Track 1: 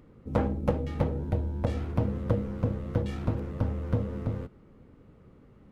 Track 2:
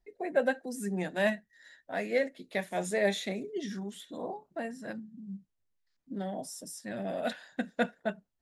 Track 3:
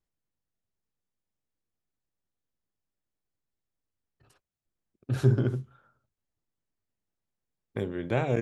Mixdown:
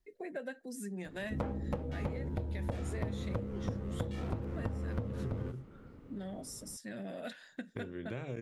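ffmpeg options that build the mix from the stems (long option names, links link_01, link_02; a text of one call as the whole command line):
ffmpeg -i stem1.wav -i stem2.wav -i stem3.wav -filter_complex "[0:a]adelay=1050,volume=0.5dB[link_01];[1:a]volume=-2dB[link_02];[2:a]volume=-0.5dB[link_03];[link_02][link_03]amix=inputs=2:normalize=0,equalizer=frequency=780:width_type=o:width=0.83:gain=-7.5,acompressor=threshold=-40dB:ratio=3,volume=0dB[link_04];[link_01][link_04]amix=inputs=2:normalize=0,acompressor=threshold=-33dB:ratio=6" out.wav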